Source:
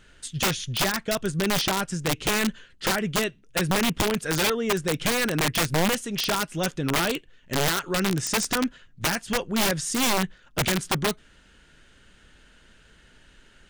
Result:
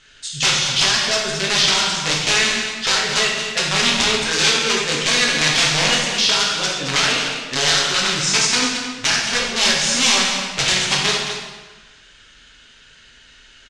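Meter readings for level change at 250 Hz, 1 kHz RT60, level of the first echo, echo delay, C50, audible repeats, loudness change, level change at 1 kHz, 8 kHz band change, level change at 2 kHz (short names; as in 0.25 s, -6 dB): -1.0 dB, 1.3 s, -9.5 dB, 0.22 s, 0.0 dB, 1, +9.0 dB, +5.0 dB, +10.5 dB, +9.5 dB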